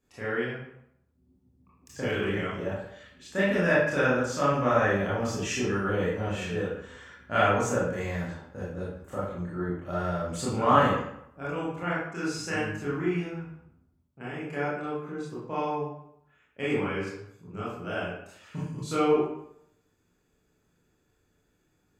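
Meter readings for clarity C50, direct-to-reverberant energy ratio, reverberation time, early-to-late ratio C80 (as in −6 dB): 0.0 dB, −9.0 dB, 0.70 s, 4.5 dB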